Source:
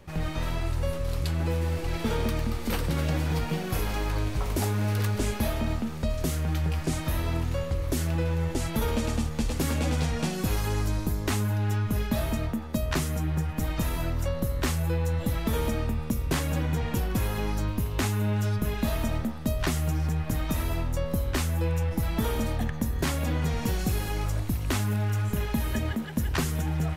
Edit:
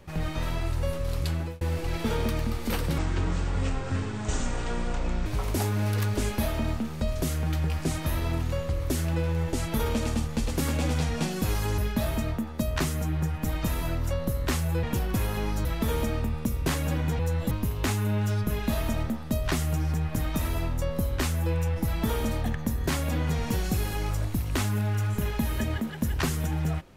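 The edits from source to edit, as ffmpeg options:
-filter_complex "[0:a]asplit=9[s0][s1][s2][s3][s4][s5][s6][s7][s8];[s0]atrim=end=1.61,asetpts=PTS-STARTPTS,afade=t=out:st=1.33:d=0.28[s9];[s1]atrim=start=1.61:end=2.984,asetpts=PTS-STARTPTS,afade=t=in:d=0.004:c=hsin[s10];[s2]atrim=start=2.98:end=4.28,asetpts=PTS-STARTPTS,asetrate=25137,aresample=44100[s11];[s3]atrim=start=4.276:end=10.802[s12];[s4]atrim=start=11.928:end=14.982[s13];[s5]atrim=start=16.838:end=17.662[s14];[s6]atrim=start=15.298:end=16.842[s15];[s7]atrim=start=14.978:end=15.302[s16];[s8]atrim=start=17.658[s17];[s9][s10]concat=n=2:v=0:a=1[s18];[s18][s11]acrossfade=d=0.004:c1=hsin:c2=hsin[s19];[s19][s12]acrossfade=d=0.004:c1=hsin:c2=hsin[s20];[s20][s13]acrossfade=d=0.004:c1=hsin:c2=hsin[s21];[s21][s14]acrossfade=d=0.004:c1=hsin:c2=hsin[s22];[s22][s15]acrossfade=d=0.004:c1=hsin:c2=hsin[s23];[s23][s16]acrossfade=d=0.004:c1=hsin:c2=hsin[s24];[s24][s17]acrossfade=d=0.004:c1=hsin:c2=hsin"

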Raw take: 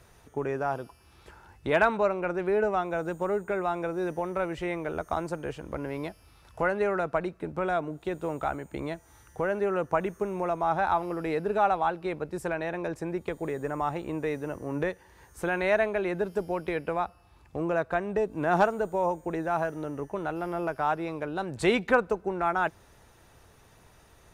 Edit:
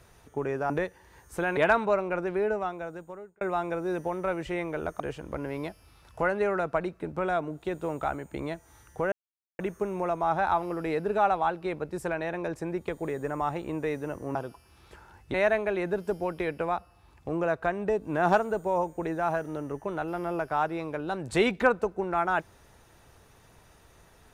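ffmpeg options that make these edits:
-filter_complex "[0:a]asplit=9[s0][s1][s2][s3][s4][s5][s6][s7][s8];[s0]atrim=end=0.702[s9];[s1]atrim=start=14.748:end=15.622[s10];[s2]atrim=start=1.688:end=3.53,asetpts=PTS-STARTPTS,afade=t=out:st=0.632:d=1.21[s11];[s3]atrim=start=3.53:end=5.122,asetpts=PTS-STARTPTS,afade=t=in:d=0.004:c=hsin[s12];[s4]atrim=start=5.398:end=9.52,asetpts=PTS-STARTPTS,afade=t=out:st=4.118:d=0.004:c=hsin[s13];[s5]atrim=start=9.52:end=9.99,asetpts=PTS-STARTPTS,volume=0[s14];[s6]atrim=start=9.99:end=14.752,asetpts=PTS-STARTPTS,afade=t=in:d=0.004:c=hsin[s15];[s7]atrim=start=0.698:end=1.692[s16];[s8]atrim=start=15.618[s17];[s9][s10]acrossfade=d=0.004:c1=hsin:c2=hsin[s18];[s11][s12]concat=n=2:v=0:a=1[s19];[s18][s19]acrossfade=d=0.004:c1=hsin:c2=hsin[s20];[s13][s14][s15]concat=n=3:v=0:a=1[s21];[s20][s21]acrossfade=d=0.004:c1=hsin:c2=hsin[s22];[s22][s16]acrossfade=d=0.004:c1=hsin:c2=hsin[s23];[s23][s17]acrossfade=d=0.004:c1=hsin:c2=hsin"

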